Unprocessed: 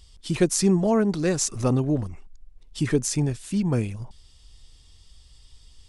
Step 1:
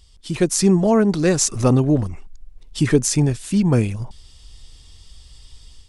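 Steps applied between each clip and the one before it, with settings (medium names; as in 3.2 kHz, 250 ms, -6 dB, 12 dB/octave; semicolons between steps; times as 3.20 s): level rider gain up to 7.5 dB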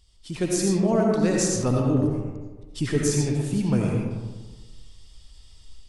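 reverberation RT60 1.3 s, pre-delay 45 ms, DRR -1 dB; trim -8.5 dB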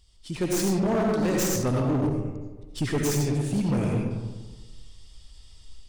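tracing distortion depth 0.091 ms; hard clipper -20.5 dBFS, distortion -11 dB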